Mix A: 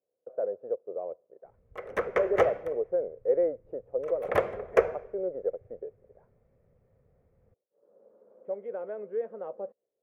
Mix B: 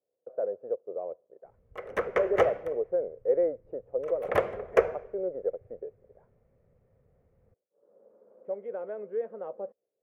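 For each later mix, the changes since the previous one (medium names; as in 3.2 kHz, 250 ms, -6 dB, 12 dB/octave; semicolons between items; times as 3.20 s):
background: remove band-stop 2.9 kHz, Q 25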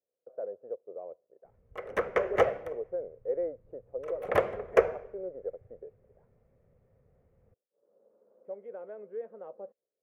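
speech -6.5 dB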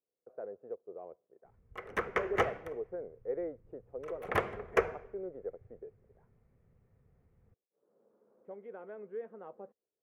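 speech +3.5 dB; master: add peaking EQ 560 Hz -12 dB 0.6 oct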